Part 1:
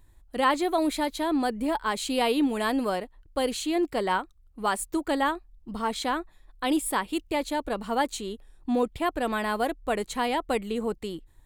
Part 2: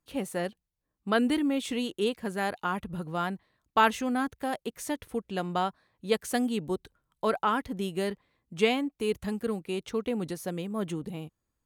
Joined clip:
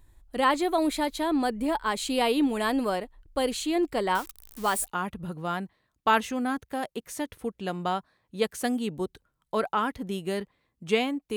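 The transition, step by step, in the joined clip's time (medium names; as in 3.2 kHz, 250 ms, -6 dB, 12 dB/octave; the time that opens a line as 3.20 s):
part 1
4.15–4.92 s: zero-crossing glitches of -28.5 dBFS
4.86 s: go over to part 2 from 2.56 s, crossfade 0.12 s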